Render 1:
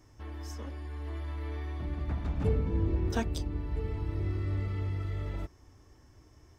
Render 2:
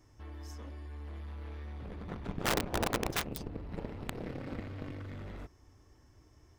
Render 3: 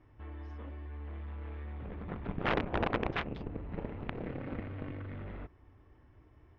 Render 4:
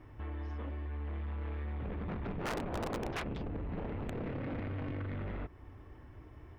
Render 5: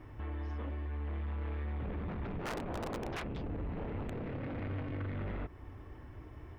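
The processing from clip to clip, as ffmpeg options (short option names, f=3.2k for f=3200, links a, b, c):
-af "aeval=exprs='0.15*(cos(1*acos(clip(val(0)/0.15,-1,1)))-cos(1*PI/2))+0.0422*(cos(7*acos(clip(val(0)/0.15,-1,1)))-cos(7*PI/2))':c=same,aeval=exprs='(mod(9.44*val(0)+1,2)-1)/9.44':c=same,volume=-3dB"
-af "lowpass=f=2.9k:w=0.5412,lowpass=f=2.9k:w=1.3066,volume=1dB"
-af "asoftclip=type=tanh:threshold=-35.5dB,acompressor=threshold=-51dB:ratio=1.5,volume=8dB"
-af "alimiter=level_in=13.5dB:limit=-24dB:level=0:latency=1:release=40,volume=-13.5dB,volume=3dB"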